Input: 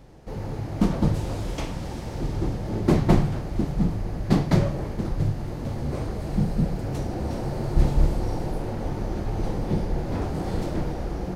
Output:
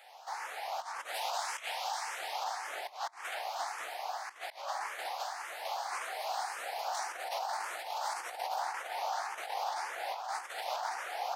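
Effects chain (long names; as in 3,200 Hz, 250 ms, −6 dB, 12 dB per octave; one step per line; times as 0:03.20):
elliptic high-pass filter 740 Hz, stop band 80 dB
compressor whose output falls as the input rises −42 dBFS, ratio −0.5
frequency shifter mixed with the dry sound +1.8 Hz
level +7.5 dB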